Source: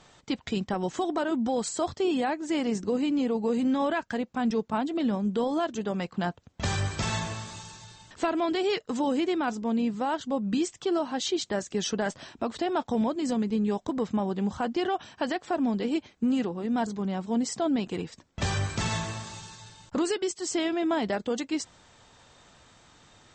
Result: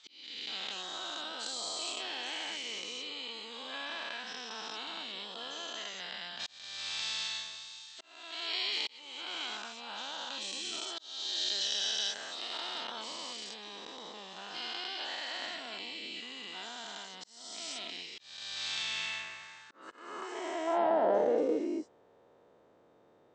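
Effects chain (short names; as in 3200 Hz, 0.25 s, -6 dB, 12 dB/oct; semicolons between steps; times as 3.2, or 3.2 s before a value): spectral dilation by 0.48 s; band-pass sweep 3800 Hz -> 450 Hz, 18.66–21.48; auto swell 0.568 s; gain -2.5 dB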